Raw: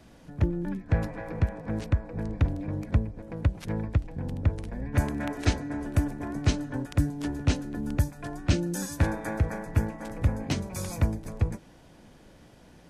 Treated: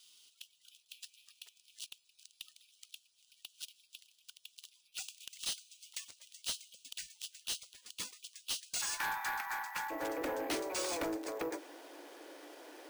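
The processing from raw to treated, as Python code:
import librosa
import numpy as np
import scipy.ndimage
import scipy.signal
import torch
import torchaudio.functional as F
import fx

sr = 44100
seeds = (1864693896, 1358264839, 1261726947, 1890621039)

y = fx.steep_highpass(x, sr, hz=fx.steps((0.0, 2800.0), (8.81, 800.0), (9.9, 290.0)), slope=96)
y = np.repeat(y[::3], 3)[:len(y)]
y = 10.0 ** (-36.5 / 20.0) * np.tanh(y / 10.0 ** (-36.5 / 20.0))
y = y * librosa.db_to_amplitude(5.0)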